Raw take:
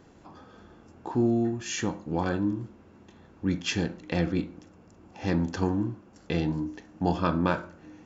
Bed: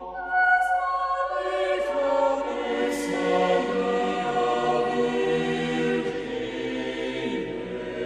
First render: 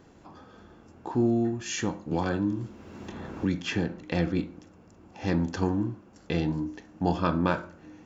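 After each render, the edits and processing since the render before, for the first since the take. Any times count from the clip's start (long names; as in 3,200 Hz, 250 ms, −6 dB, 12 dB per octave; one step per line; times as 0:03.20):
0:02.11–0:04.03: multiband upward and downward compressor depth 70%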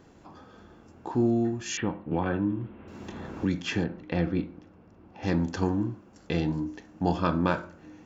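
0:01.77–0:02.88: Butterworth low-pass 3,100 Hz
0:03.84–0:05.23: high-frequency loss of the air 200 metres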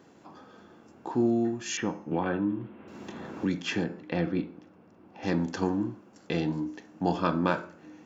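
high-pass filter 160 Hz 12 dB per octave
hum removal 430.4 Hz, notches 38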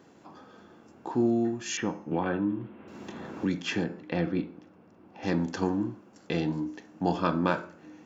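no processing that can be heard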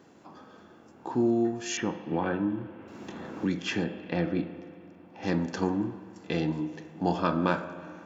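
echo ahead of the sound 58 ms −23 dB
spring reverb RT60 2.4 s, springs 37/45 ms, chirp 65 ms, DRR 12 dB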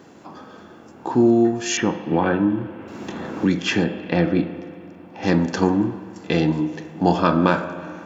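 level +9.5 dB
brickwall limiter −3 dBFS, peak gain reduction 2 dB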